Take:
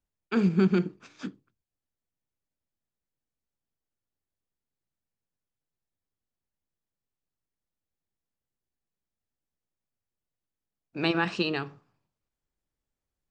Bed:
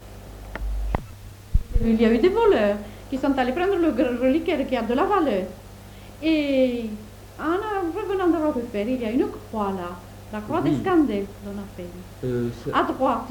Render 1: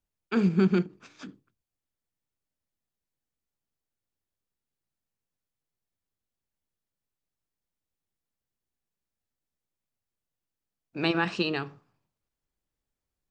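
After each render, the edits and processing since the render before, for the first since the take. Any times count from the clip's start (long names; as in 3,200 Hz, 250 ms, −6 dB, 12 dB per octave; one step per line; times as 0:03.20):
0:00.82–0:01.29: downward compressor, threshold −38 dBFS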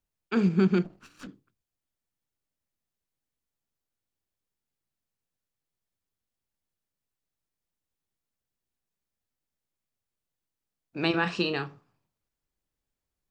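0:00.84–0:01.27: lower of the sound and its delayed copy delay 0.71 ms
0:11.10–0:11.67: double-tracking delay 34 ms −9 dB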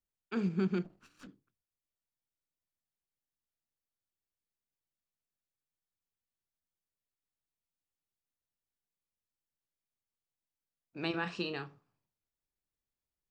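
level −9 dB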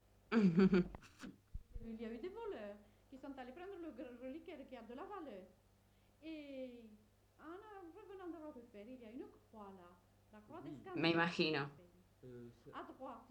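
mix in bed −30 dB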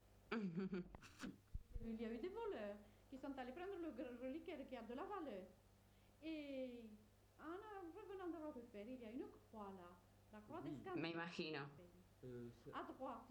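downward compressor 12 to 1, threshold −44 dBFS, peak gain reduction 17.5 dB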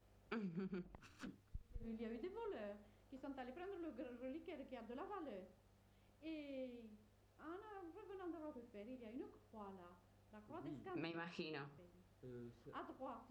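high-shelf EQ 5,500 Hz −5.5 dB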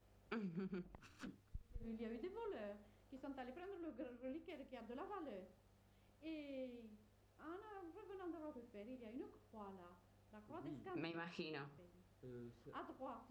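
0:03.60–0:04.81: multiband upward and downward expander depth 100%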